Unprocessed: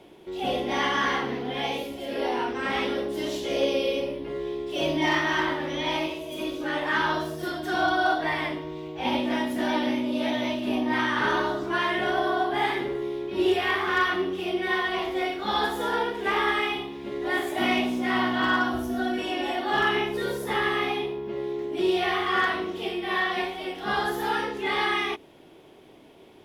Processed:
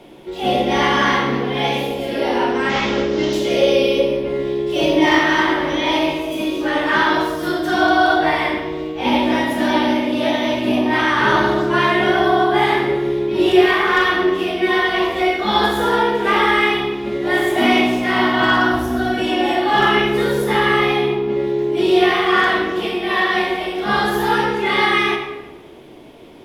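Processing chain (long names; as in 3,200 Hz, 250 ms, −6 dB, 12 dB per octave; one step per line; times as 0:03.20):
0:02.69–0:03.33: variable-slope delta modulation 32 kbit/s
on a send: convolution reverb RT60 1.1 s, pre-delay 3 ms, DRR 1.5 dB
on the sum: level +7 dB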